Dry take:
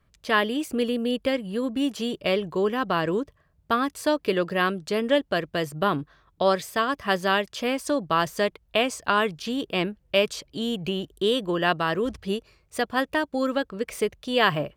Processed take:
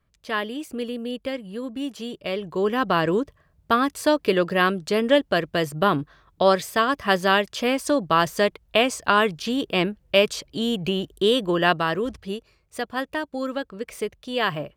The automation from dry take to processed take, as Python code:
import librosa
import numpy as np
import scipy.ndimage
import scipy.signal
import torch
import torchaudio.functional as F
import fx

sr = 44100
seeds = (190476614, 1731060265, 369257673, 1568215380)

y = fx.gain(x, sr, db=fx.line((2.31, -4.5), (2.78, 3.5), (11.67, 3.5), (12.32, -3.0)))